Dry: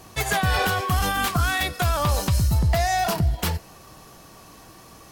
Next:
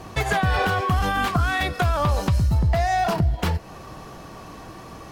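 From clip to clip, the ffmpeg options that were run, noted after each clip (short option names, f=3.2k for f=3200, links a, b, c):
-af "lowpass=f=2.1k:p=1,acompressor=threshold=-32dB:ratio=2,volume=8.5dB"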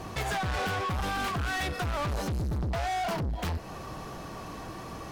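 -af "asoftclip=type=tanh:threshold=-28.5dB"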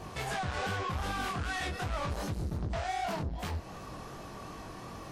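-af "flanger=delay=19.5:depth=5.9:speed=2.6,volume=-1dB" -ar 44100 -c:a wmav2 -b:a 64k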